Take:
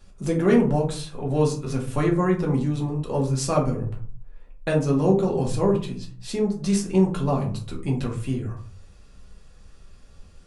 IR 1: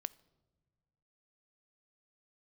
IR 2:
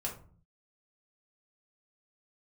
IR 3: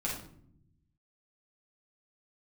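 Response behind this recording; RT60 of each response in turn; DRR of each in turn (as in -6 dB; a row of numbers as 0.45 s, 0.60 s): 2; no single decay rate, 0.45 s, 0.65 s; 18.0 dB, -2.5 dB, -5.5 dB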